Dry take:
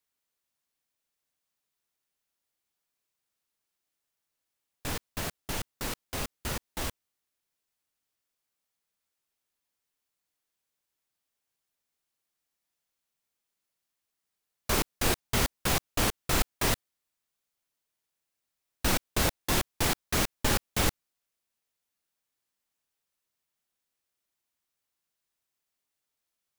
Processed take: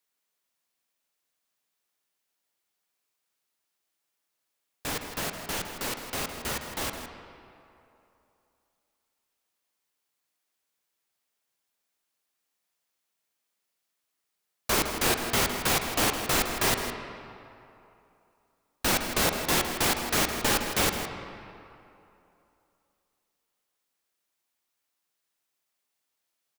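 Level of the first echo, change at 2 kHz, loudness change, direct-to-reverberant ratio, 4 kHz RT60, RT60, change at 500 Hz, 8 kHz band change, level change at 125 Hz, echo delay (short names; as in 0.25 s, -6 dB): -10.5 dB, +4.0 dB, +3.0 dB, 4.5 dB, 1.7 s, 2.9 s, +3.5 dB, +3.5 dB, -3.0 dB, 0.161 s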